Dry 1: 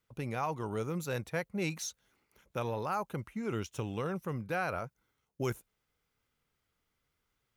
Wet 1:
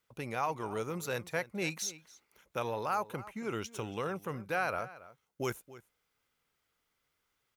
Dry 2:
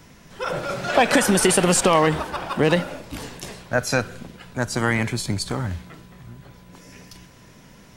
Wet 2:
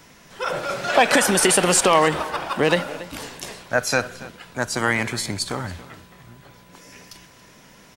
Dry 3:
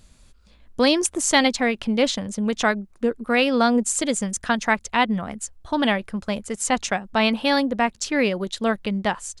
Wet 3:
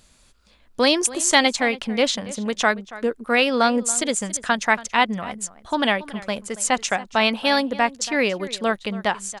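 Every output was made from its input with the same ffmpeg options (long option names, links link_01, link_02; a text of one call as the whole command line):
ffmpeg -i in.wav -filter_complex "[0:a]lowshelf=frequency=270:gain=-10,asplit=2[link_01][link_02];[link_02]adelay=279.9,volume=-17dB,highshelf=frequency=4000:gain=-6.3[link_03];[link_01][link_03]amix=inputs=2:normalize=0,volume=2.5dB" out.wav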